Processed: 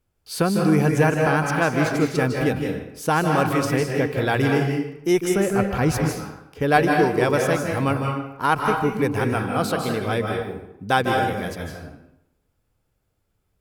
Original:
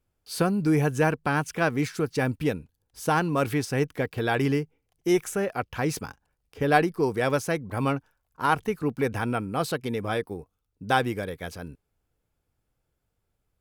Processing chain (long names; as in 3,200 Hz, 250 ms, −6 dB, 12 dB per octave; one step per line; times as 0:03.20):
0:05.33–0:05.91: low-shelf EQ 150 Hz +11.5 dB
on a send: convolution reverb RT60 0.80 s, pre-delay 147 ms, DRR 1.5 dB
on the sum: level +3 dB